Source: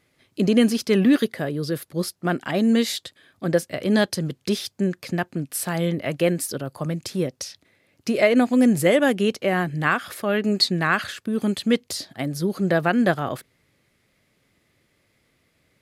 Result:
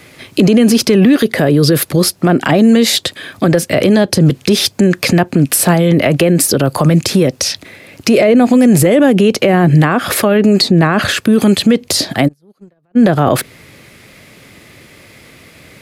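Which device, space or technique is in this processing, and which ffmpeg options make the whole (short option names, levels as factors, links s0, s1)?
mastering chain: -filter_complex "[0:a]highpass=f=53:p=1,equalizer=f=2500:t=o:w=0.26:g=3,acrossover=split=350|850[s0][s1][s2];[s0]acompressor=threshold=0.0794:ratio=4[s3];[s1]acompressor=threshold=0.0631:ratio=4[s4];[s2]acompressor=threshold=0.0178:ratio=4[s5];[s3][s4][s5]amix=inputs=3:normalize=0,acompressor=threshold=0.0501:ratio=2,asoftclip=type=hard:threshold=0.141,alimiter=level_in=21.1:limit=0.891:release=50:level=0:latency=1,asplit=3[s6][s7][s8];[s6]afade=t=out:st=12.27:d=0.02[s9];[s7]agate=range=0.00355:threshold=0.794:ratio=16:detection=peak,afade=t=in:st=12.27:d=0.02,afade=t=out:st=12.95:d=0.02[s10];[s8]afade=t=in:st=12.95:d=0.02[s11];[s9][s10][s11]amix=inputs=3:normalize=0,volume=0.891"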